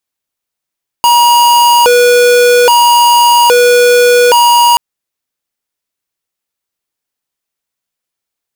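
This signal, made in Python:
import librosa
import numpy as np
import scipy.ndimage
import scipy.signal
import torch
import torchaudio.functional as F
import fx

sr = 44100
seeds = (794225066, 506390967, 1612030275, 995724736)

y = fx.siren(sr, length_s=3.73, kind='hi-lo', low_hz=487.0, high_hz=954.0, per_s=0.61, wave='square', level_db=-6.0)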